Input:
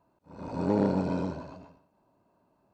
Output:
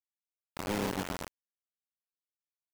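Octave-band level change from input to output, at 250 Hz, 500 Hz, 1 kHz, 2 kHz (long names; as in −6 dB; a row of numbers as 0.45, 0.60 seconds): −10.0, −8.5, −4.0, +5.0 decibels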